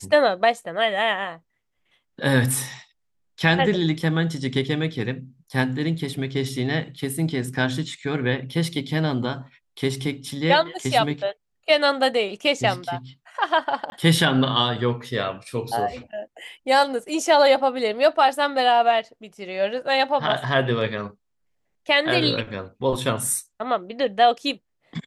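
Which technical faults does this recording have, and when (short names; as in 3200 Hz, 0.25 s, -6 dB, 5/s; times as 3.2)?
13.9–13.92 gap 21 ms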